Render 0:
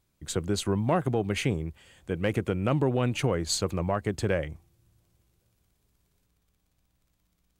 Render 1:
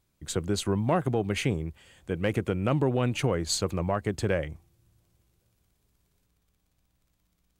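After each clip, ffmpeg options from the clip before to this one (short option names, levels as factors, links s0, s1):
-af anull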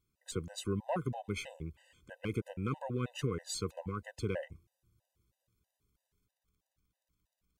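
-af "afftfilt=real='re*gt(sin(2*PI*3.1*pts/sr)*(1-2*mod(floor(b*sr/1024/510),2)),0)':imag='im*gt(sin(2*PI*3.1*pts/sr)*(1-2*mod(floor(b*sr/1024/510),2)),0)':win_size=1024:overlap=0.75,volume=0.447"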